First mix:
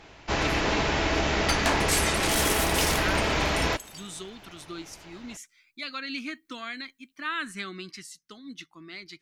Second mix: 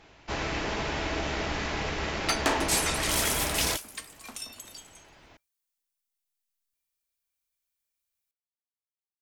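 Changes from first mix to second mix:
speech: muted
first sound −5.5 dB
second sound: entry +0.80 s

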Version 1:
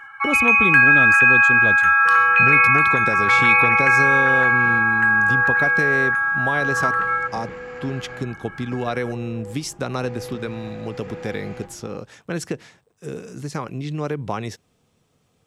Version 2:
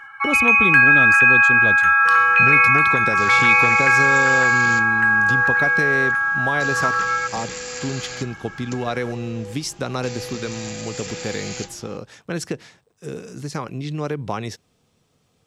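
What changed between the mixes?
second sound: remove low-pass filter 1,400 Hz 12 dB per octave
master: add parametric band 4,700 Hz +3.5 dB 0.95 octaves

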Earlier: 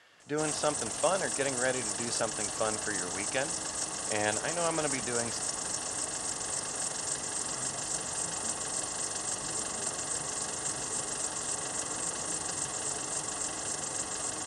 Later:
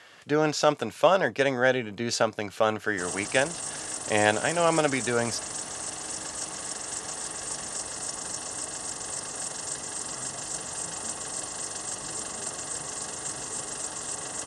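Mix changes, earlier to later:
speech +8.5 dB
background: entry +2.60 s

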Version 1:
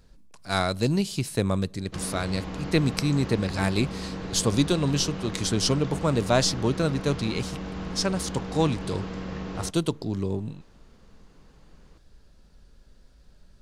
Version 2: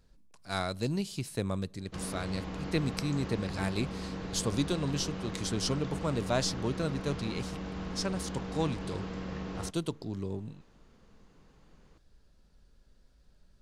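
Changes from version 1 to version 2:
speech −8.0 dB
background −4.0 dB

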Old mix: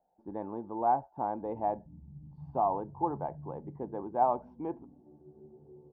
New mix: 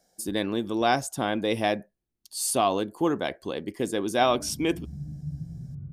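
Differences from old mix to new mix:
background: entry +2.85 s
master: remove transistor ladder low-pass 930 Hz, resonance 80%

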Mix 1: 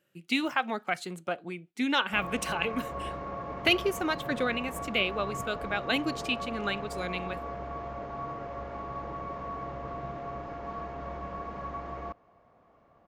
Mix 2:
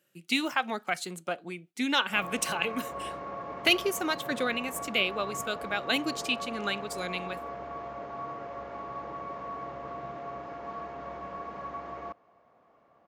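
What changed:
speech: add bass and treble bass +4 dB, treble +7 dB
master: add high-pass filter 260 Hz 6 dB per octave

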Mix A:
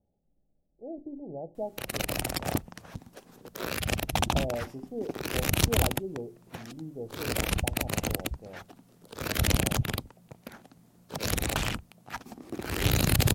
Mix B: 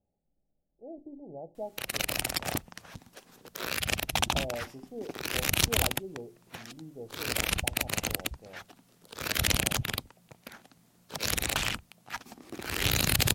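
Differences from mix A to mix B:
background: add high-shelf EQ 5,100 Hz −5 dB
master: add tilt shelving filter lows −6 dB, about 1,200 Hz

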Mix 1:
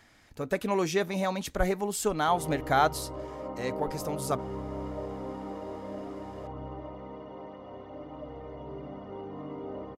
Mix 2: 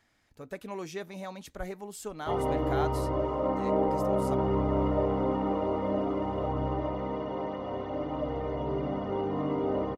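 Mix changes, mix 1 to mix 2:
speech −10.5 dB
background +9.5 dB

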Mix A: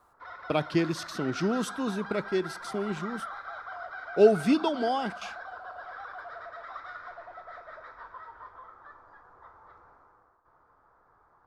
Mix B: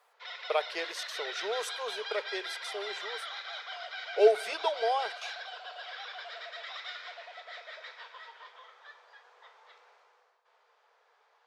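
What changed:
background: add high shelf with overshoot 1,900 Hz +14 dB, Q 3
master: add elliptic high-pass filter 440 Hz, stop band 40 dB

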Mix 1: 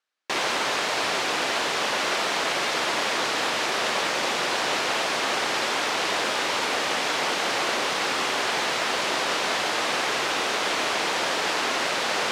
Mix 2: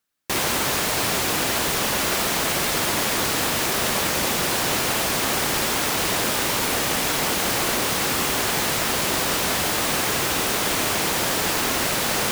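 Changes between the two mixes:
background: add high-pass filter 290 Hz 6 dB per octave
master: remove band-pass filter 480–4,900 Hz

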